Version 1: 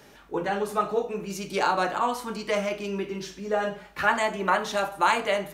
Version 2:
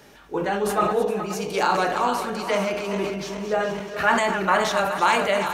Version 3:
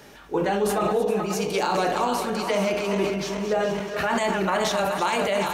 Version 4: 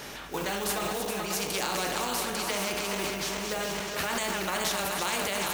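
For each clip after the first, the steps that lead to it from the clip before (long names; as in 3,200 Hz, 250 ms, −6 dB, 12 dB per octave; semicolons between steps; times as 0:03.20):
feedback delay that plays each chunk backwards 211 ms, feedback 71%, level −9 dB; level that may fall only so fast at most 47 dB per second; level +2 dB
dynamic equaliser 1,400 Hz, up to −6 dB, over −33 dBFS, Q 1.1; brickwall limiter −16.5 dBFS, peak gain reduction 7.5 dB; level +2.5 dB
floating-point word with a short mantissa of 4 bits; every bin compressed towards the loudest bin 2 to 1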